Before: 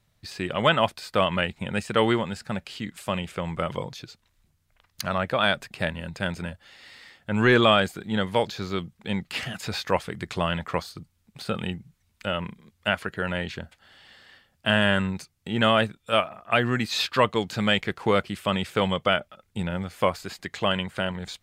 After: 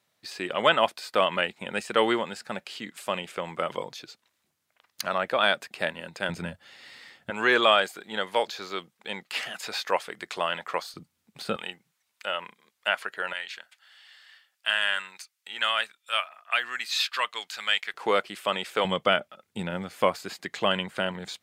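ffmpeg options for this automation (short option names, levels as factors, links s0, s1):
-af "asetnsamples=n=441:p=0,asendcmd='6.29 highpass f 130;7.3 highpass f 490;10.94 highpass f 210;11.56 highpass f 650;13.33 highpass f 1400;17.94 highpass f 420;18.85 highpass f 200',highpass=320"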